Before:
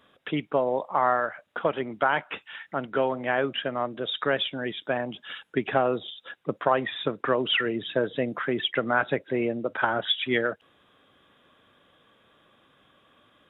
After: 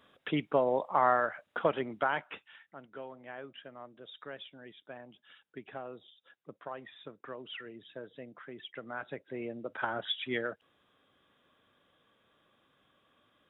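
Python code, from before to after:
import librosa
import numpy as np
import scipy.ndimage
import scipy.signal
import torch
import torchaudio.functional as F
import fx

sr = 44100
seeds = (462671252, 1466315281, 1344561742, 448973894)

y = fx.gain(x, sr, db=fx.line((1.68, -3.0), (2.39, -10.0), (2.73, -19.5), (8.6, -19.5), (9.87, -9.0)))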